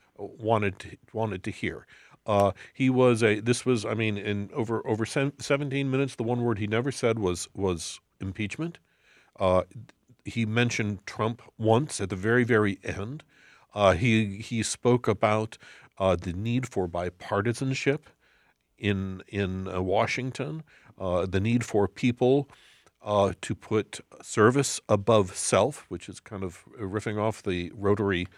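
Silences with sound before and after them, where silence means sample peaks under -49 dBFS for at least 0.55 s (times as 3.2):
18.11–18.79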